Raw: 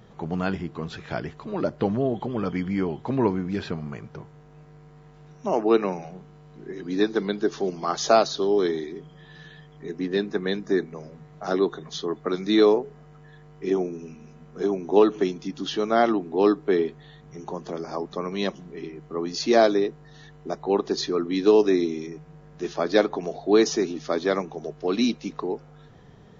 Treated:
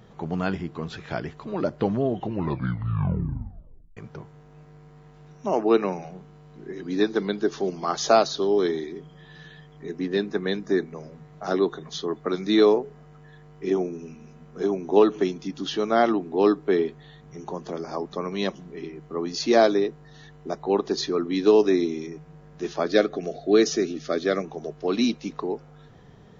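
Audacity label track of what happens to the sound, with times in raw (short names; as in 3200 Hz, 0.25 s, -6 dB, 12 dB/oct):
2.080000	2.080000	tape stop 1.89 s
22.870000	24.440000	Butterworth band-stop 920 Hz, Q 2.2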